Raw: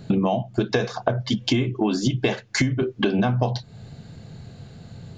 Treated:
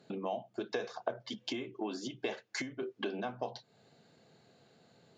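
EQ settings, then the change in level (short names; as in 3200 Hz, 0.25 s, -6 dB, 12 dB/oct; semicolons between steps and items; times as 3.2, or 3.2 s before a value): band-pass 390 Hz, Q 0.86; differentiator; low shelf 370 Hz +3 dB; +10.0 dB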